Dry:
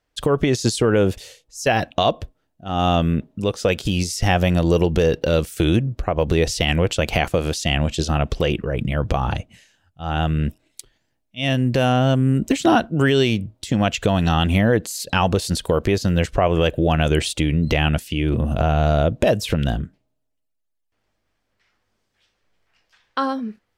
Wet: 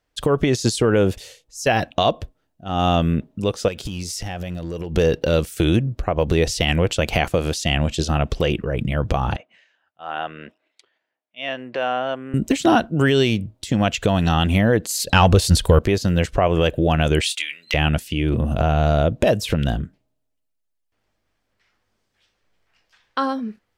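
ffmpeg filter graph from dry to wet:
ffmpeg -i in.wav -filter_complex "[0:a]asettb=1/sr,asplit=3[link_01][link_02][link_03];[link_01]atrim=end=3.684[link_04];[link_02]atrim=start=3.68:end=4.95,asetpts=PTS-STARTPTS,afade=type=in:duration=0.004:curve=qsin,afade=type=out:start_time=1.266:duration=0.004:curve=qsin,acompressor=threshold=-24dB:ratio=8:attack=3.2:release=140:knee=1:detection=peak,asoftclip=type=hard:threshold=-21dB[link_05];[link_03]atrim=start=4.946[link_06];[link_04][link_05]acrossfade=duration=0.004:curve1=hsin:curve2=qsin[link_07];[link_07][link_06]acrossfade=duration=0.004:curve1=qsin:curve2=hsin,asettb=1/sr,asplit=3[link_08][link_09][link_10];[link_08]atrim=end=9.364[link_11];[link_09]atrim=start=9.36:end=12.34,asetpts=PTS-STARTPTS,afade=type=in:duration=0.004:curve=qsin,afade=type=out:start_time=2.976:duration=0.004:curve=qsin,highpass=590,lowpass=2400,bandreject=frequency=840:width=17[link_12];[link_10]atrim=start=12.336[link_13];[link_11][link_12]acrossfade=duration=0.004:curve1=hsin:curve2=qsin[link_14];[link_14][link_13]acrossfade=duration=0.004:curve1=qsin:curve2=hsin,asettb=1/sr,asplit=3[link_15][link_16][link_17];[link_15]atrim=end=14.894[link_18];[link_16]atrim=start=14.89:end=15.79,asetpts=PTS-STARTPTS,afade=type=in:duration=0.004:curve=qsin,afade=type=out:start_time=0.896:duration=0.004:curve=qsin,asubboost=boost=11:cutoff=120,acontrast=26[link_19];[link_17]atrim=start=15.786[link_20];[link_18][link_19]acrossfade=duration=0.004:curve1=hsin:curve2=qsin[link_21];[link_21][link_20]acrossfade=duration=0.004:curve1=qsin:curve2=hsin,asettb=1/sr,asplit=3[link_22][link_23][link_24];[link_22]atrim=end=17.214[link_25];[link_23]atrim=start=17.21:end=17.74,asetpts=PTS-STARTPTS,afade=type=in:duration=0.004:curve=qsin,afade=type=out:start_time=0.526:duration=0.004:curve=qsin,highpass=frequency=2100:width_type=q:width=1.6,asplit=2[link_26][link_27];[link_27]adelay=22,volume=-11dB[link_28];[link_26][link_28]amix=inputs=2:normalize=0,atrim=end_sample=23373[link_29];[link_24]atrim=start=17.736[link_30];[link_25][link_29]acrossfade=duration=0.004:curve1=hsin:curve2=qsin[link_31];[link_31][link_30]acrossfade=duration=0.004:curve1=qsin:curve2=hsin" out.wav

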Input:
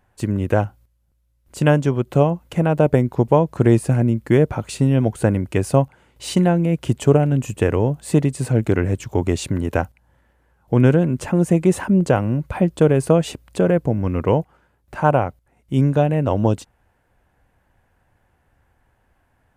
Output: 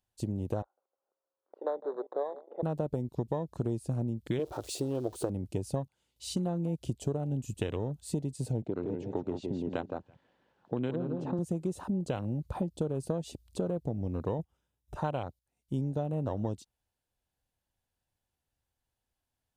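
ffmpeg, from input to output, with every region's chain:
ffmpeg -i in.wav -filter_complex "[0:a]asettb=1/sr,asplit=3[link_01][link_02][link_03];[link_01]atrim=end=0.624[link_04];[link_02]atrim=start=0.62:end=2.63,asetpts=PTS-STARTPTS,afade=type=in:duration=0.004:curve=qsin,afade=type=out:start_time=2.006:duration=0.004:curve=qsin,acompressor=mode=upward:threshold=-24dB:ratio=2.5:attack=3.2:release=140:knee=2.83:detection=peak,asuperpass=centerf=750:order=8:qfactor=0.72,asplit=2[link_05][link_06];[link_06]adelay=156,lowpass=frequency=1100:poles=1,volume=-19dB,asplit=2[link_07][link_08];[link_08]adelay=156,lowpass=frequency=1100:poles=1,volume=0.52,asplit=2[link_09][link_10];[link_10]adelay=156,lowpass=frequency=1100:poles=1,volume=0.52,asplit=2[link_11][link_12];[link_12]adelay=156,lowpass=frequency=1100:poles=1,volume=0.52[link_13];[link_05][link_07][link_09][link_11][link_13]amix=inputs=5:normalize=0,atrim=end_sample=88641[link_14];[link_03]atrim=start=2.626[link_15];[link_04][link_14]acrossfade=duration=0.004:curve1=hsin:curve2=qsin[link_16];[link_16][link_15]acrossfade=duration=0.004:curve1=qsin:curve2=hsin,asettb=1/sr,asplit=3[link_17][link_18][link_19];[link_17]atrim=end=4.394[link_20];[link_18]atrim=start=4.39:end=5.3,asetpts=PTS-STARTPTS,afade=type=in:duration=0.004:curve=qsin,afade=type=out:start_time=0.906:duration=0.004:curve=qsin,aeval=exprs='val(0)+0.5*0.0335*sgn(val(0))':channel_layout=same,lowshelf=frequency=270:width_type=q:width=3:gain=-7.5[link_21];[link_19]atrim=start=5.296[link_22];[link_20][link_21]acrossfade=duration=0.004:curve1=hsin:curve2=qsin[link_23];[link_23][link_22]acrossfade=duration=0.004:curve1=qsin:curve2=hsin,asettb=1/sr,asplit=3[link_24][link_25][link_26];[link_24]atrim=end=8.624[link_27];[link_25]atrim=start=8.62:end=11.39,asetpts=PTS-STARTPTS,afade=type=in:duration=0.004:curve=qsin,afade=type=out:start_time=2.766:duration=0.004:curve=qsin,acompressor=mode=upward:threshold=-25dB:ratio=2.5:attack=3.2:release=140:knee=2.83:detection=peak,highpass=180,lowpass=2300,aecho=1:1:165|330|495:0.501|0.115|0.0265,atrim=end_sample=122157[link_28];[link_26]atrim=start=11.386[link_29];[link_27][link_28]acrossfade=duration=0.004:curve1=hsin:curve2=qsin[link_30];[link_30][link_29]acrossfade=duration=0.004:curve1=qsin:curve2=hsin,asettb=1/sr,asplit=3[link_31][link_32][link_33];[link_31]atrim=end=14.394[link_34];[link_32]atrim=start=14.39:end=15,asetpts=PTS-STARTPTS,afade=type=in:duration=0.004:curve=qsin,afade=type=out:start_time=0.606:duration=0.004:curve=qsin,asuperstop=centerf=4400:order=4:qfactor=5.4,lowshelf=frequency=280:gain=6[link_35];[link_33]atrim=start=14.996[link_36];[link_34][link_35]acrossfade=duration=0.004:curve1=hsin:curve2=qsin[link_37];[link_37][link_36]acrossfade=duration=0.004:curve1=qsin:curve2=hsin,afwtdn=0.0398,highshelf=frequency=2700:width_type=q:width=1.5:gain=13,acompressor=threshold=-21dB:ratio=6,volume=-8dB" out.wav

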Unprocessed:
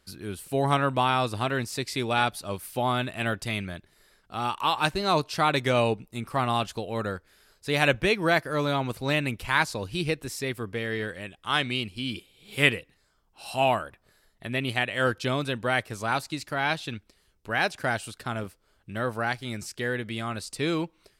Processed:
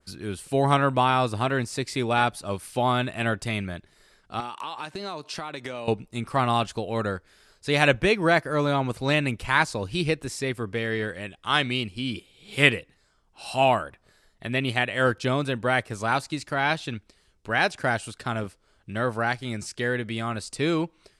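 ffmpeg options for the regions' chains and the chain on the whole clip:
ffmpeg -i in.wav -filter_complex "[0:a]asettb=1/sr,asplit=3[link_01][link_02][link_03];[link_01]atrim=end=4.404[link_04];[link_02]atrim=start=4.4:end=5.88,asetpts=PTS-STARTPTS,afade=type=in:duration=0.004:curve=qsin,afade=type=out:start_time=1.476:duration=0.004:curve=qsin,highpass=170,acompressor=threshold=-33dB:ratio=8:attack=3.2:release=140:knee=1:detection=peak[link_05];[link_03]atrim=start=5.876[link_06];[link_04][link_05]acrossfade=duration=0.004:curve1=hsin:curve2=qsin[link_07];[link_07][link_06]acrossfade=duration=0.004:curve1=qsin:curve2=hsin,lowpass=frequency=10000:width=0.5412,lowpass=frequency=10000:width=1.3066,adynamicequalizer=threshold=0.00794:dfrequency=3900:dqfactor=0.72:tfrequency=3900:tqfactor=0.72:attack=5:release=100:ratio=0.375:range=2.5:mode=cutabove:tftype=bell,volume=3dB" out.wav

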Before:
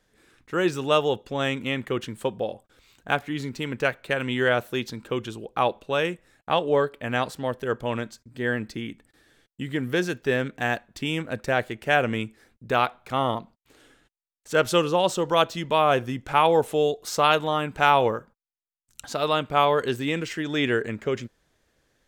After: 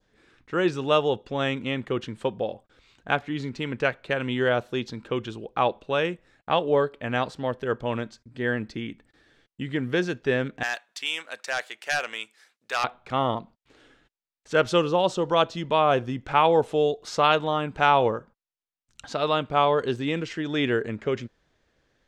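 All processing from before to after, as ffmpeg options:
ffmpeg -i in.wav -filter_complex "[0:a]asettb=1/sr,asplit=3[link_01][link_02][link_03];[link_01]atrim=end=10.634[link_04];[link_02]atrim=start=10.63:end=12.84,asetpts=PTS-STARTPTS,afade=type=in:duration=0.004:curve=qsin,afade=type=out:start_time=2.206:duration=0.004:curve=qsin,highpass=890,asoftclip=type=hard:threshold=-19.5dB,aemphasis=mode=production:type=75fm[link_05];[link_03]atrim=start=12.836[link_06];[link_04][link_05]acrossfade=duration=0.004:curve1=hsin:curve2=qsin[link_07];[link_07][link_06]acrossfade=duration=0.004:curve1=qsin:curve2=hsin,lowpass=5100,adynamicequalizer=threshold=0.0112:dfrequency=2000:dqfactor=1.2:tfrequency=2000:tqfactor=1.2:attack=5:release=100:ratio=0.375:range=3.5:mode=cutabove:tftype=bell" out.wav

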